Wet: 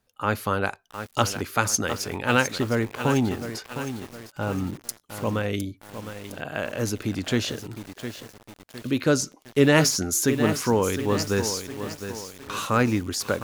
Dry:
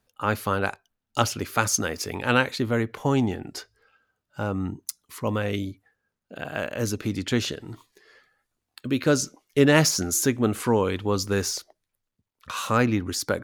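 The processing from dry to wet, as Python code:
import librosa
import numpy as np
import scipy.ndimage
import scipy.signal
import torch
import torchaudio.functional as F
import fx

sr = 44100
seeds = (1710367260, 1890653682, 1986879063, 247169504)

y = fx.echo_crushed(x, sr, ms=710, feedback_pct=55, bits=6, wet_db=-9.0)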